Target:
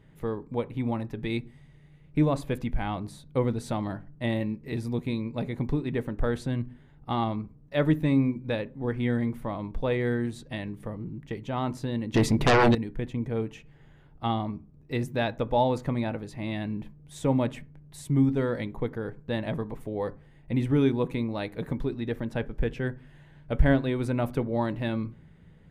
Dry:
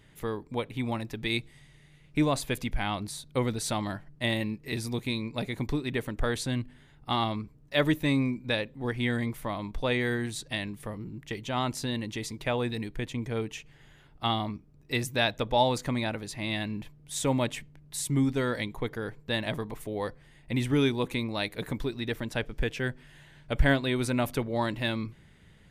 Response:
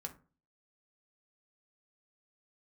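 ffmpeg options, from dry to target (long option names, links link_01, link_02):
-filter_complex "[0:a]tiltshelf=frequency=1400:gain=6,asplit=2[link_01][link_02];[1:a]atrim=start_sample=2205,lowpass=4300[link_03];[link_02][link_03]afir=irnorm=-1:irlink=0,volume=-4dB[link_04];[link_01][link_04]amix=inputs=2:normalize=0,asettb=1/sr,asplit=3[link_05][link_06][link_07];[link_05]atrim=end=12.144[link_08];[link_06]atrim=start=12.14:end=12.75,asetpts=PTS-STARTPTS,afade=type=in:duration=0.004:curve=qsin,afade=type=out:start_time=0.606:duration=0.004:curve=qsin,aeval=exprs='0.335*sin(PI/2*3.98*val(0)/0.335)':channel_layout=same[link_09];[link_07]atrim=start=12.746[link_10];[link_08][link_09]acrossfade=duration=0.004:curve1=hsin:curve2=qsin[link_11];[link_11][link_10]acrossfade=duration=0.004:curve1=qsin:curve2=hsin,volume=-6dB"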